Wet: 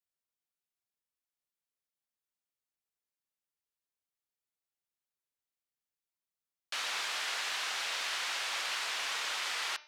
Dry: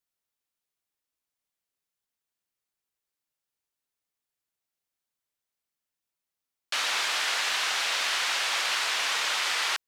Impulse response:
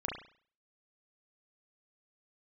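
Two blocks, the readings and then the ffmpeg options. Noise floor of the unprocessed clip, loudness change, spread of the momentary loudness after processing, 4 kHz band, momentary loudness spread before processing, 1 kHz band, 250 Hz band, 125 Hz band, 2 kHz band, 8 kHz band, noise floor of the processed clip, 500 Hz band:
under -85 dBFS, -8.0 dB, 0 LU, -8.0 dB, 0 LU, -8.0 dB, -8.0 dB, n/a, -8.0 dB, -8.0 dB, under -85 dBFS, -8.0 dB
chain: -filter_complex "[0:a]bandreject=f=299.6:t=h:w=4,bandreject=f=599.2:t=h:w=4,bandreject=f=898.8:t=h:w=4,bandreject=f=1.1984k:t=h:w=4,bandreject=f=1.498k:t=h:w=4,bandreject=f=1.7976k:t=h:w=4,bandreject=f=2.0972k:t=h:w=4,bandreject=f=2.3968k:t=h:w=4,bandreject=f=2.6964k:t=h:w=4,bandreject=f=2.996k:t=h:w=4,bandreject=f=3.2956k:t=h:w=4,bandreject=f=3.5952k:t=h:w=4,bandreject=f=3.8948k:t=h:w=4,bandreject=f=4.1944k:t=h:w=4,bandreject=f=4.494k:t=h:w=4,bandreject=f=4.7936k:t=h:w=4,bandreject=f=5.0932k:t=h:w=4,bandreject=f=5.3928k:t=h:w=4,bandreject=f=5.6924k:t=h:w=4,bandreject=f=5.992k:t=h:w=4,bandreject=f=6.2916k:t=h:w=4,asplit=2[a][b];[1:a]atrim=start_sample=2205[c];[b][c]afir=irnorm=-1:irlink=0,volume=-20.5dB[d];[a][d]amix=inputs=2:normalize=0,volume=-8.5dB"

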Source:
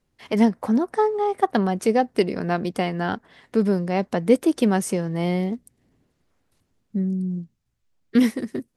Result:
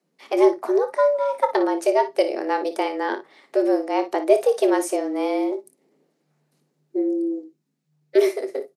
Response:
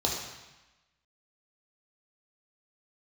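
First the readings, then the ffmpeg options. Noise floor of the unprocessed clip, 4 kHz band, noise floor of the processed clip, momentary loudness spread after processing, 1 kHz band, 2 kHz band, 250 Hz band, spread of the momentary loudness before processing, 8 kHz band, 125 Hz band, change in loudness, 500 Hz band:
-73 dBFS, -1.0 dB, -73 dBFS, 8 LU, +1.0 dB, -0.5 dB, -3.5 dB, 9 LU, -0.5 dB, under -35 dB, +1.0 dB, +4.5 dB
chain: -filter_complex "[0:a]afreqshift=150,aecho=1:1:26|57:0.237|0.251,asplit=2[a][b];[1:a]atrim=start_sample=2205,atrim=end_sample=3528[c];[b][c]afir=irnorm=-1:irlink=0,volume=-22.5dB[d];[a][d]amix=inputs=2:normalize=0,volume=-1.5dB"

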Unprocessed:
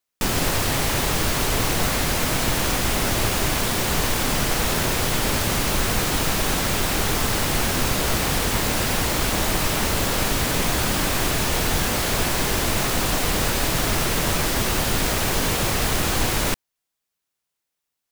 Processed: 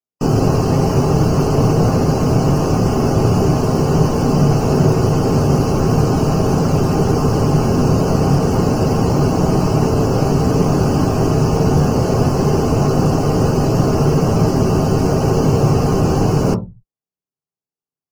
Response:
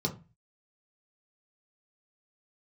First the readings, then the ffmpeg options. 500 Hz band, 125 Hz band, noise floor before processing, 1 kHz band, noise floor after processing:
+10.5 dB, +13.5 dB, -82 dBFS, +5.0 dB, under -85 dBFS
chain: -filter_complex "[0:a]asplit=2[a][b];[b]equalizer=f=600:w=0.57:g=13[c];[1:a]atrim=start_sample=2205,lowshelf=f=190:g=11.5[d];[c][d]afir=irnorm=-1:irlink=0,volume=-8.5dB[e];[a][e]amix=inputs=2:normalize=0,afftdn=nr=15:nf=-31,volume=-4dB"

